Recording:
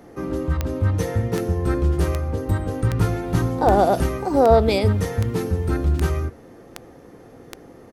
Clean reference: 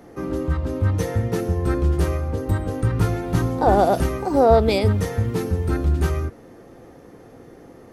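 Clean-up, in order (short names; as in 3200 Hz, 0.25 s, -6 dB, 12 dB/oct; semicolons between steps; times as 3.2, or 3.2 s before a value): de-click; inverse comb 75 ms -24 dB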